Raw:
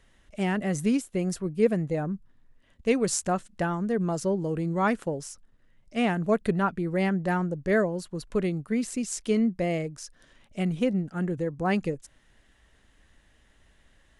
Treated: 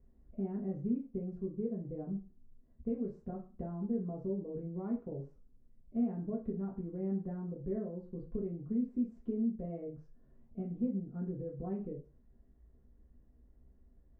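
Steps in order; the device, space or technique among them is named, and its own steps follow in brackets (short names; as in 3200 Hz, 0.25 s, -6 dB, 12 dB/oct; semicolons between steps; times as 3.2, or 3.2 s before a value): television next door (compressor 4:1, threshold -32 dBFS, peak gain reduction 13.5 dB; LPF 330 Hz 12 dB/oct; reverb RT60 0.35 s, pre-delay 3 ms, DRR -3.5 dB); gain -4 dB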